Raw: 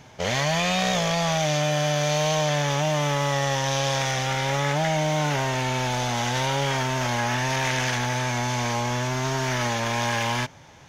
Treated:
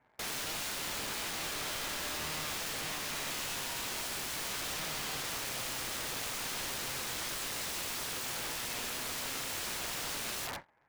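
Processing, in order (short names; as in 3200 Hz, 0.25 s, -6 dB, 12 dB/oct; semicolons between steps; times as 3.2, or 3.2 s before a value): octaver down 2 oct, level +4 dB; HPF 730 Hz 6 dB/oct; gate with hold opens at -36 dBFS; steep low-pass 2100 Hz 36 dB/oct; negative-ratio compressor -37 dBFS, ratio -1; sample leveller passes 2; wrapped overs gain 33 dB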